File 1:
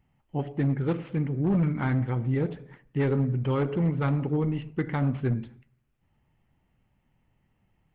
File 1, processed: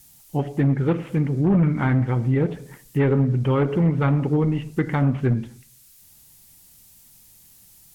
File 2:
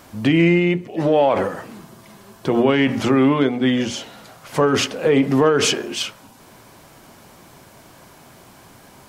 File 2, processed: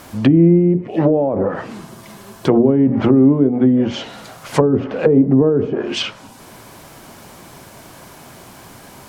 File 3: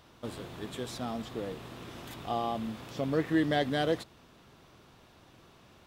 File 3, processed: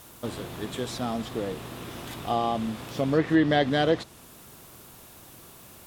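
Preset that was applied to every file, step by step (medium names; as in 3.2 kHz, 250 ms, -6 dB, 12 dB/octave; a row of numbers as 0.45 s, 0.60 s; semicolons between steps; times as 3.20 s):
added noise violet -53 dBFS; low-pass that closes with the level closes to 380 Hz, closed at -13.5 dBFS; trim +6 dB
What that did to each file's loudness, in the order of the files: +6.0 LU, +3.0 LU, +6.0 LU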